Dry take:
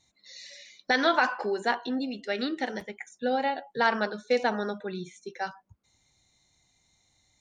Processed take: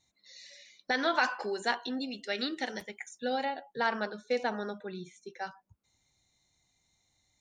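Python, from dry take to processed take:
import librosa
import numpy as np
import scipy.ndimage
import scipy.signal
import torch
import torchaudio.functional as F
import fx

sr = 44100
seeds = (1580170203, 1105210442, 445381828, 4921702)

y = fx.high_shelf(x, sr, hz=2600.0, db=10.0, at=(1.15, 3.45))
y = y * librosa.db_to_amplitude(-5.5)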